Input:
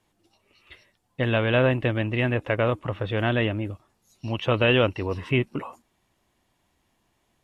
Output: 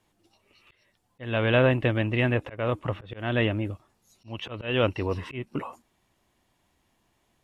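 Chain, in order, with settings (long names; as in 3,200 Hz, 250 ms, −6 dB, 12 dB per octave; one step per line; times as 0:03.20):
volume swells 266 ms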